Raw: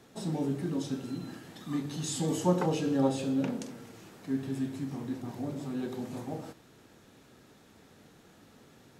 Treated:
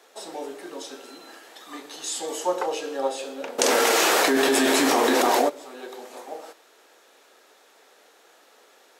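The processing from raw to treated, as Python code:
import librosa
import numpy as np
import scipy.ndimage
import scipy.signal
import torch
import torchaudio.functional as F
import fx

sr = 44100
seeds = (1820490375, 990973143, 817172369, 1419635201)

y = scipy.signal.sosfilt(scipy.signal.butter(4, 450.0, 'highpass', fs=sr, output='sos'), x)
y = fx.env_flatten(y, sr, amount_pct=100, at=(3.58, 5.48), fade=0.02)
y = y * 10.0 ** (6.0 / 20.0)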